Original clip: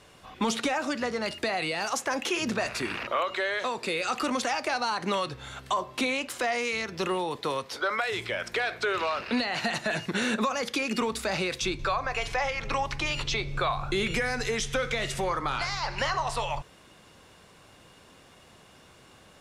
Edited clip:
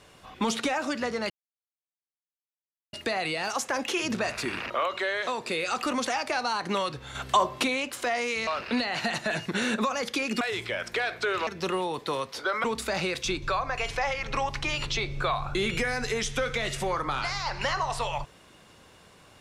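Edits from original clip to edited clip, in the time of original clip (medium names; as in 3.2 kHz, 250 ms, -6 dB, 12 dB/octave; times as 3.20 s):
1.30 s: insert silence 1.63 s
5.52–6.00 s: gain +6 dB
6.84–8.01 s: swap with 9.07–11.01 s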